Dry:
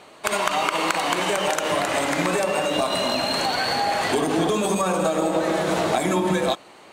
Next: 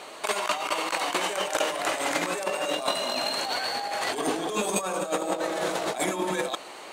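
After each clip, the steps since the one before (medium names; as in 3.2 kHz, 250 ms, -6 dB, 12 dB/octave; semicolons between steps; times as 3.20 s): tone controls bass -12 dB, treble +3 dB; compressor with a negative ratio -27 dBFS, ratio -0.5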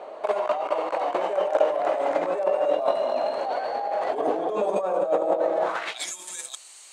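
bass shelf 100 Hz +11.5 dB; band-pass sweep 600 Hz -> 7.8 kHz, 5.59–6.14 s; trim +8.5 dB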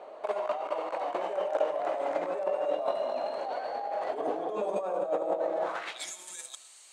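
algorithmic reverb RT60 1.1 s, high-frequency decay 1×, pre-delay 35 ms, DRR 14.5 dB; trim -7 dB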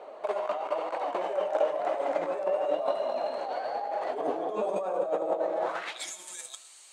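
flange 1 Hz, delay 1.8 ms, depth 9.2 ms, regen +63%; trim +5.5 dB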